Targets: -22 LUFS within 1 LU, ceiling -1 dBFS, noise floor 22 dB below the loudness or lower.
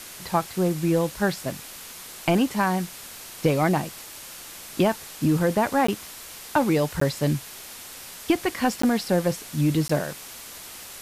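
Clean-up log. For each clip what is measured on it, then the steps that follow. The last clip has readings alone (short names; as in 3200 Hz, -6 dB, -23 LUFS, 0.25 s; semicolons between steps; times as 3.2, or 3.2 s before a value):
dropouts 4; longest dropout 14 ms; noise floor -41 dBFS; noise floor target -47 dBFS; loudness -24.5 LUFS; peak -10.0 dBFS; loudness target -22.0 LUFS
-> interpolate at 5.87/7/8.82/9.88, 14 ms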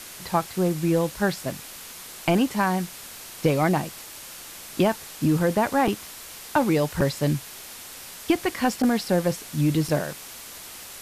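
dropouts 0; noise floor -41 dBFS; noise floor target -47 dBFS
-> denoiser 6 dB, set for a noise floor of -41 dBFS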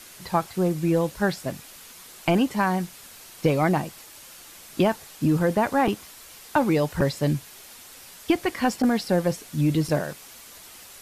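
noise floor -46 dBFS; noise floor target -47 dBFS
-> denoiser 6 dB, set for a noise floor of -46 dBFS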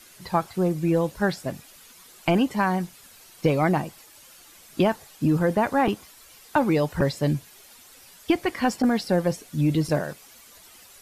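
noise floor -51 dBFS; loudness -24.5 LUFS; peak -10.0 dBFS; loudness target -22.0 LUFS
-> gain +2.5 dB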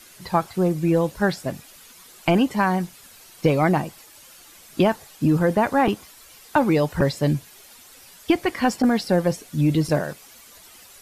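loudness -22.0 LUFS; peak -7.5 dBFS; noise floor -48 dBFS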